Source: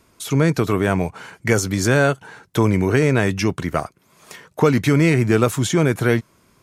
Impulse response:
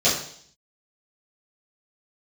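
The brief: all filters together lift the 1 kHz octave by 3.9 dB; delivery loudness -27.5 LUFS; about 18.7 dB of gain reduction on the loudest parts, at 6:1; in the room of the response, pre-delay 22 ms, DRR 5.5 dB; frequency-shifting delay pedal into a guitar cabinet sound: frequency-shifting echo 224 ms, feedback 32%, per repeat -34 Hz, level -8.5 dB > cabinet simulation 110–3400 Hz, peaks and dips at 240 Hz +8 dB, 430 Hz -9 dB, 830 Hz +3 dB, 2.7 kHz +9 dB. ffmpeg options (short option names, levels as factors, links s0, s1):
-filter_complex "[0:a]equalizer=f=1000:t=o:g=4,acompressor=threshold=0.0282:ratio=6,asplit=2[s0][s1];[1:a]atrim=start_sample=2205,adelay=22[s2];[s1][s2]afir=irnorm=-1:irlink=0,volume=0.075[s3];[s0][s3]amix=inputs=2:normalize=0,asplit=5[s4][s5][s6][s7][s8];[s5]adelay=224,afreqshift=-34,volume=0.376[s9];[s6]adelay=448,afreqshift=-68,volume=0.12[s10];[s7]adelay=672,afreqshift=-102,volume=0.0385[s11];[s8]adelay=896,afreqshift=-136,volume=0.0123[s12];[s4][s9][s10][s11][s12]amix=inputs=5:normalize=0,highpass=110,equalizer=f=240:t=q:w=4:g=8,equalizer=f=430:t=q:w=4:g=-9,equalizer=f=830:t=q:w=4:g=3,equalizer=f=2700:t=q:w=4:g=9,lowpass=f=3400:w=0.5412,lowpass=f=3400:w=1.3066,volume=1.68"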